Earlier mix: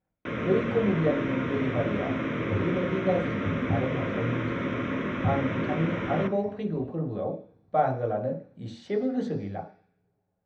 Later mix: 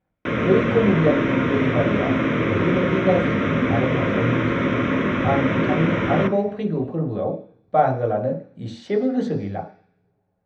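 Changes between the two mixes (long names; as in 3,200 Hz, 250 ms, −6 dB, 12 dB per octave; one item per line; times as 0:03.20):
speech +6.5 dB
first sound +9.0 dB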